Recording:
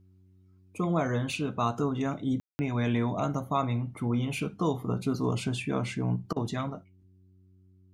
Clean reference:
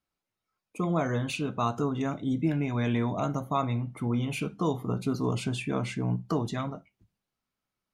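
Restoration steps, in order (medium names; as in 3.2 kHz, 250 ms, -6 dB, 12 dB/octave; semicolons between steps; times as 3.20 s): de-hum 93.3 Hz, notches 4; room tone fill 2.40–2.59 s; interpolate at 6.33 s, 32 ms; trim 0 dB, from 6.84 s +7 dB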